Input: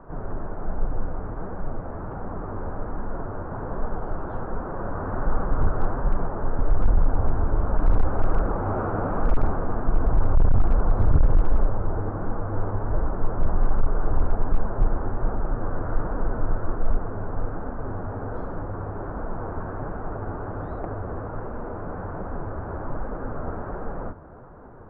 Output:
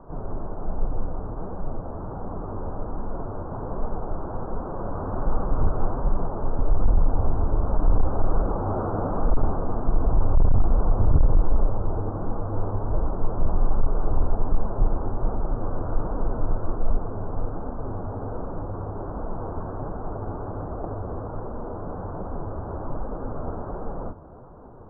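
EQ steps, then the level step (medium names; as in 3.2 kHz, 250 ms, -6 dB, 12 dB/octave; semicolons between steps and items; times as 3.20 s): low-pass 1.2 kHz 24 dB/octave; 0.0 dB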